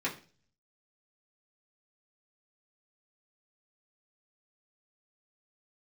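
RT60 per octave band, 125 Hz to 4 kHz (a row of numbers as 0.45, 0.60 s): 0.75, 0.50, 0.45, 0.35, 0.40, 0.40 s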